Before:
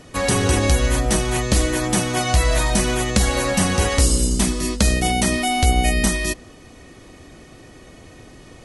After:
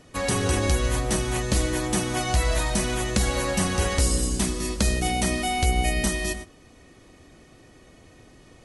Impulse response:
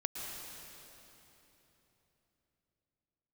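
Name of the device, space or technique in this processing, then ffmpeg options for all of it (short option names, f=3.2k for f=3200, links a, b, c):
keyed gated reverb: -filter_complex "[0:a]asplit=3[a][b][c];[1:a]atrim=start_sample=2205[d];[b][d]afir=irnorm=-1:irlink=0[e];[c]apad=whole_len=381454[f];[e][f]sidechaingate=range=-33dB:threshold=-33dB:ratio=16:detection=peak,volume=-9dB[g];[a][g]amix=inputs=2:normalize=0,volume=-8dB"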